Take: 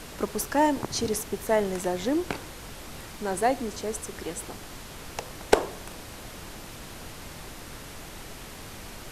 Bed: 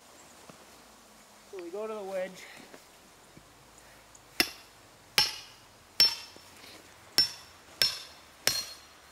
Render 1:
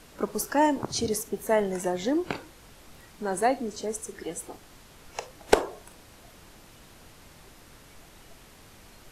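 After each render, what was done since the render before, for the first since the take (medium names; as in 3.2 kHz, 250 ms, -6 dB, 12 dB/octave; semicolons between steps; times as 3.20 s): noise print and reduce 10 dB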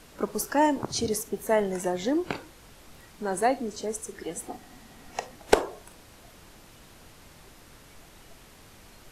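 4.35–5.36 s: small resonant body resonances 240/740/1900 Hz, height 10 dB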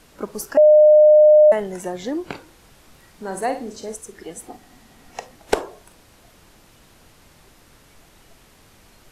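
0.57–1.52 s: bleep 607 Hz -7 dBFS; 2.43–3.95 s: flutter echo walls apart 8.7 m, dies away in 0.36 s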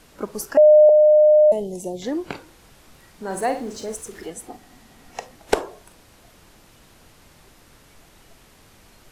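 0.89–2.02 s: Butterworth band-stop 1.5 kHz, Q 0.53; 3.30–4.30 s: companding laws mixed up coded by mu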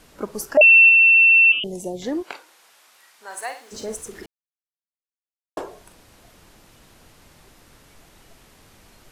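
0.61–1.64 s: frequency inversion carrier 3.3 kHz; 2.22–3.71 s: high-pass 630 Hz -> 1.3 kHz; 4.26–5.57 s: mute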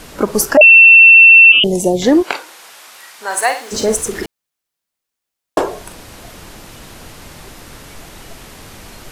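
loudness maximiser +15.5 dB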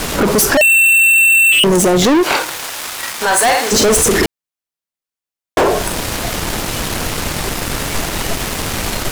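waveshaping leveller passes 5; peak limiter -8.5 dBFS, peak gain reduction 7.5 dB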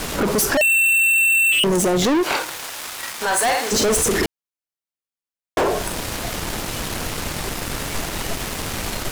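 trim -6.5 dB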